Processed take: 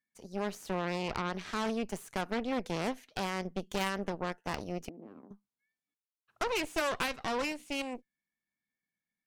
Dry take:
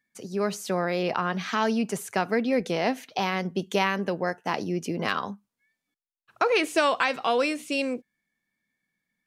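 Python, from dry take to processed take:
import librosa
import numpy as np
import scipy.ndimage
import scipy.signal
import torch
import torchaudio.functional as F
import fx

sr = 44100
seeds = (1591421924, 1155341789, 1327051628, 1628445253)

y = fx.cheby_harmonics(x, sr, harmonics=(3, 8), levels_db=(-17, -17), full_scale_db=-9.5)
y = fx.ladder_bandpass(y, sr, hz=300.0, resonance_pct=50, at=(4.89, 5.31))
y = y * librosa.db_to_amplitude(-7.5)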